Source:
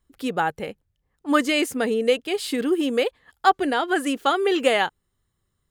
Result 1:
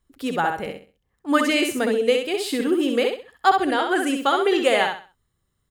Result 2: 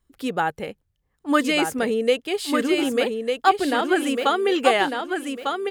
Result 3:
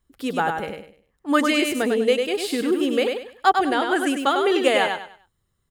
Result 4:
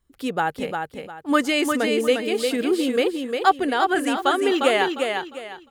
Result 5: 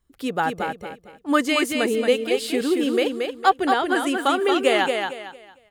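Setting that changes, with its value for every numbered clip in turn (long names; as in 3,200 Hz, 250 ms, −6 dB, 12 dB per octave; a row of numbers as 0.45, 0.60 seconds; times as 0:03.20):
repeating echo, delay time: 65, 1,200, 99, 353, 227 milliseconds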